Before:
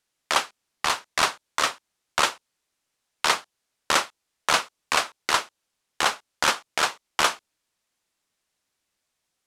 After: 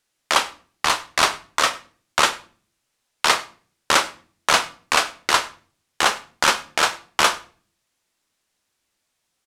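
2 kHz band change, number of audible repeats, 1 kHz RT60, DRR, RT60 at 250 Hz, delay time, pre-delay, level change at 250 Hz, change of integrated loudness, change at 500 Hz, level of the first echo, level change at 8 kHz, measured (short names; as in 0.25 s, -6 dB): +4.5 dB, 1, 0.40 s, 10.5 dB, 0.65 s, 99 ms, 9 ms, +4.5 dB, +4.5 dB, +4.5 dB, -23.5 dB, +4.5 dB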